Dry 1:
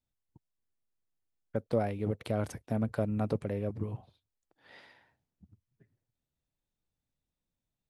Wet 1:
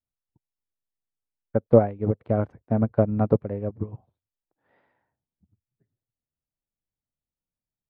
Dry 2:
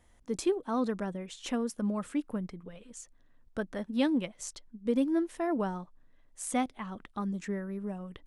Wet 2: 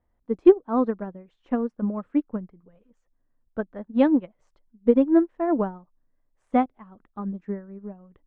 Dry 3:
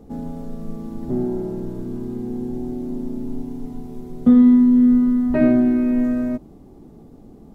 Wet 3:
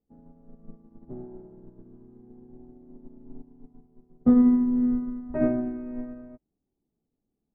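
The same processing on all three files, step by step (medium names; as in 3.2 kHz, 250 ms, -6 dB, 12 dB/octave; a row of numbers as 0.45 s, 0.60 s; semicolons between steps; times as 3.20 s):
low-pass 1.3 kHz 12 dB/octave; dynamic bell 220 Hz, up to -6 dB, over -29 dBFS, Q 1.3; upward expansion 2.5:1, over -40 dBFS; normalise loudness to -24 LUFS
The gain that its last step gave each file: +15.5 dB, +16.5 dB, +1.0 dB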